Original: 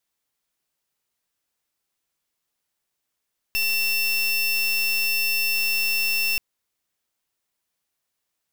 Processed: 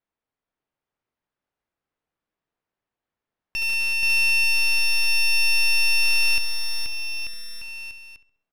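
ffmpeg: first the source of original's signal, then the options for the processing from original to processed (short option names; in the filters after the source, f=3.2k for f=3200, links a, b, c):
-f lavfi -i "aevalsrc='0.075*(2*lt(mod(2700*t,1),0.3)-1)':d=2.83:s=44100"
-filter_complex "[0:a]asplit=2[a][b];[b]aecho=0:1:67|134|201|268|335:0.237|0.109|0.0502|0.0231|0.0106[c];[a][c]amix=inputs=2:normalize=0,adynamicsmooth=sensitivity=2:basefreq=1.9k,asplit=2[d][e];[e]aecho=0:1:480|888|1235|1530|1780:0.631|0.398|0.251|0.158|0.1[f];[d][f]amix=inputs=2:normalize=0"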